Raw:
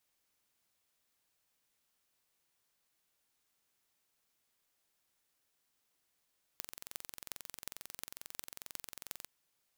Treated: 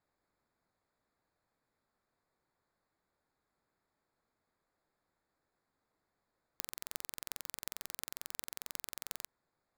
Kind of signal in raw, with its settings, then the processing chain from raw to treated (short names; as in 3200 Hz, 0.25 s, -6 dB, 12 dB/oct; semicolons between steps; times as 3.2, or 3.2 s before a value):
pulse train 22.3/s, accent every 8, -12 dBFS 2.65 s
Wiener smoothing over 15 samples; in parallel at +1 dB: limiter -24 dBFS